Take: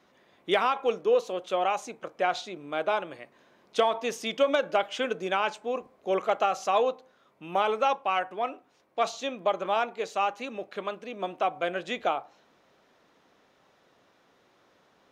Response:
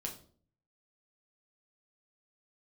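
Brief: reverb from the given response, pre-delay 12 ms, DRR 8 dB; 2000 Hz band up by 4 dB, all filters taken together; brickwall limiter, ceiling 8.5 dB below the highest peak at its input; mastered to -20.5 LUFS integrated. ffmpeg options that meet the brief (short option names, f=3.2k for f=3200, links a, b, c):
-filter_complex "[0:a]equalizer=f=2k:t=o:g=5.5,alimiter=limit=-18dB:level=0:latency=1,asplit=2[a][b];[1:a]atrim=start_sample=2205,adelay=12[c];[b][c]afir=irnorm=-1:irlink=0,volume=-7.5dB[d];[a][d]amix=inputs=2:normalize=0,volume=10dB"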